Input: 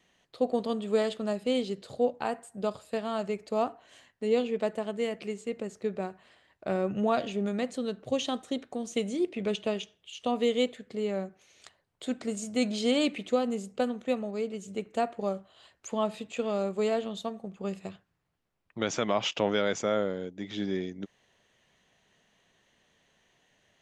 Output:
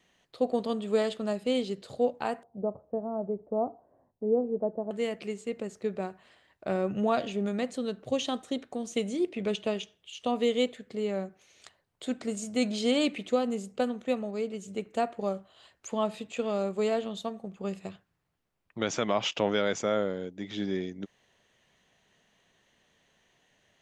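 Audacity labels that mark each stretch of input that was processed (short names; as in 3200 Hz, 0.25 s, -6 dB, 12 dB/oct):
2.430000	4.910000	inverse Chebyshev low-pass stop band from 3600 Hz, stop band 70 dB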